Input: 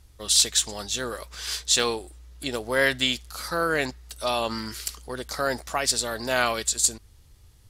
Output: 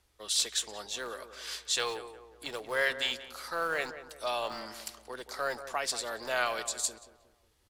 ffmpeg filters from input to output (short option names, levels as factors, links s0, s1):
-filter_complex "[0:a]bass=f=250:g=-15,treble=f=4000:g=-5,acrossover=split=330|1300[s0][s1][s2];[s0]aeval=exprs='(mod(89.1*val(0)+1,2)-1)/89.1':c=same[s3];[s3][s1][s2]amix=inputs=3:normalize=0,asplit=2[s4][s5];[s5]adelay=181,lowpass=f=1400:p=1,volume=0.299,asplit=2[s6][s7];[s7]adelay=181,lowpass=f=1400:p=1,volume=0.48,asplit=2[s8][s9];[s9]adelay=181,lowpass=f=1400:p=1,volume=0.48,asplit=2[s10][s11];[s11]adelay=181,lowpass=f=1400:p=1,volume=0.48,asplit=2[s12][s13];[s13]adelay=181,lowpass=f=1400:p=1,volume=0.48[s14];[s4][s6][s8][s10][s12][s14]amix=inputs=6:normalize=0,volume=0.501"